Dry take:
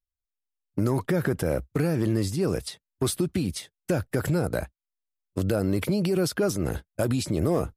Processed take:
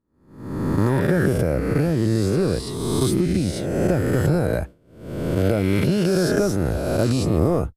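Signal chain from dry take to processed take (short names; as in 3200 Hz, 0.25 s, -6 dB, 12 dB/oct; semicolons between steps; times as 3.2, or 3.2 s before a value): spectral swells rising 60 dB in 1.72 s; expander -29 dBFS; tilt -1.5 dB/oct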